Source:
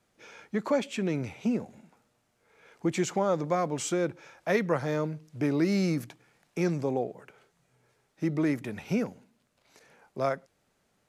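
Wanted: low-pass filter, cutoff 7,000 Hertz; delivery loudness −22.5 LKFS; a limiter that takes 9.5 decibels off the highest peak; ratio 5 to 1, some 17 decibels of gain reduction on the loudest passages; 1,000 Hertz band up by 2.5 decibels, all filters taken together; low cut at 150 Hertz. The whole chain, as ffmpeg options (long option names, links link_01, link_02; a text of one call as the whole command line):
ffmpeg -i in.wav -af "highpass=150,lowpass=7000,equalizer=frequency=1000:width_type=o:gain=3.5,acompressor=threshold=-41dB:ratio=5,volume=25dB,alimiter=limit=-12dB:level=0:latency=1" out.wav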